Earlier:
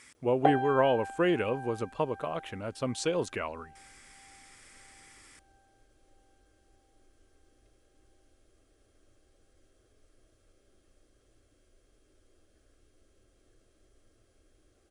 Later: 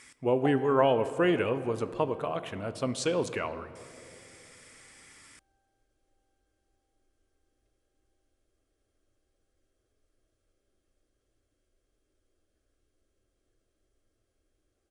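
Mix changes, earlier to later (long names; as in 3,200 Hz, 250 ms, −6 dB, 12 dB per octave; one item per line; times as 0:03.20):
background −10.5 dB
reverb: on, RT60 2.6 s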